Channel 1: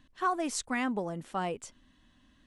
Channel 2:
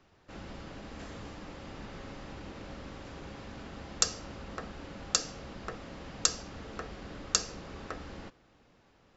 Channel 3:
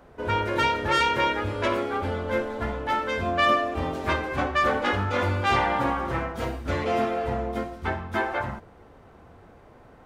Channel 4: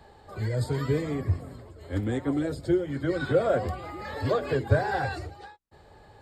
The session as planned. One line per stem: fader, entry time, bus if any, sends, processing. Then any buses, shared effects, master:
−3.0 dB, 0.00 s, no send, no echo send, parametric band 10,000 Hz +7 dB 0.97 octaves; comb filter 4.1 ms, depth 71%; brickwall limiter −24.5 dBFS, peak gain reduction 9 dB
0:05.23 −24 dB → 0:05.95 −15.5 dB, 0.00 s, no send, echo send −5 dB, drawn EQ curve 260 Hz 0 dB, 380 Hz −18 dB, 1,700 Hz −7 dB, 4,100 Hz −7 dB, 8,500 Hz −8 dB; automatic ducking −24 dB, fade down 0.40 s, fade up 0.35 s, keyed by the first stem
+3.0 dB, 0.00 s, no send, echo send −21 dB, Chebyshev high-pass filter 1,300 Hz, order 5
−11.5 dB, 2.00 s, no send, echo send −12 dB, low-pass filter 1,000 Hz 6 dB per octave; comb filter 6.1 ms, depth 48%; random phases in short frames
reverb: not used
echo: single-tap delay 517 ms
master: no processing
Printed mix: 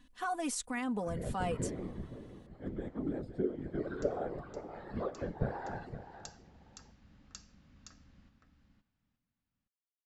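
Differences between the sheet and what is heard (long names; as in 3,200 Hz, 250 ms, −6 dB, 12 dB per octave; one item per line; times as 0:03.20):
stem 3: muted
stem 4: entry 2.00 s → 0.70 s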